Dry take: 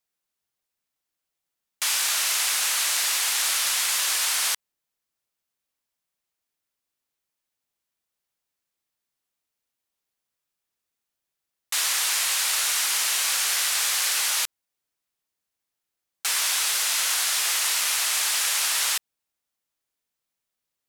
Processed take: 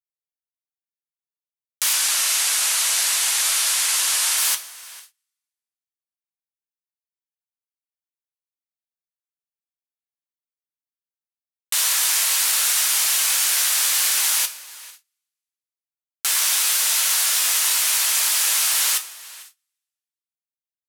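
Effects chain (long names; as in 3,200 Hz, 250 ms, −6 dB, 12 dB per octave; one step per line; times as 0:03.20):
gain into a clipping stage and back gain 14 dB
0:01.93–0:04.38: low-pass filter 12,000 Hz 24 dB per octave
slap from a distant wall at 77 metres, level −20 dB
coupled-rooms reverb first 0.24 s, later 1.8 s, from −18 dB, DRR 6 dB
noise gate −51 dBFS, range −33 dB
high-shelf EQ 8,800 Hz +8.5 dB
one half of a high-frequency compander encoder only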